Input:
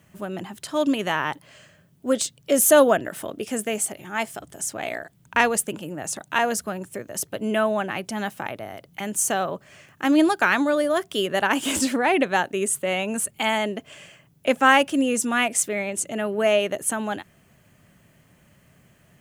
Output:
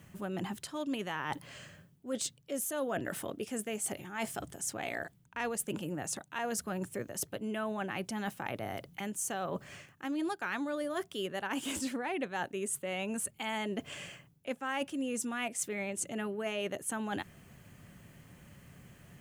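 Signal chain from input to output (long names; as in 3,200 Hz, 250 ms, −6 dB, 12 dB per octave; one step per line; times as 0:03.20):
low-shelf EQ 190 Hz +4 dB
notch filter 630 Hz, Q 12
reversed playback
downward compressor 6 to 1, threshold −34 dBFS, peak gain reduction 21.5 dB
reversed playback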